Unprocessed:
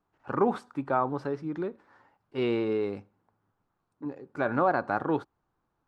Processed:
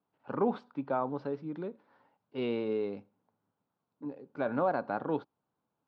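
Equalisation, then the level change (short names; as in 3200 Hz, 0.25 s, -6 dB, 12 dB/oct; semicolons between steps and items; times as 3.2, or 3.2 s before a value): speaker cabinet 180–4100 Hz, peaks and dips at 350 Hz -8 dB, 770 Hz -3 dB, 1200 Hz -4 dB, 1800 Hz -4 dB; bell 1800 Hz -6 dB 2 oct; 0.0 dB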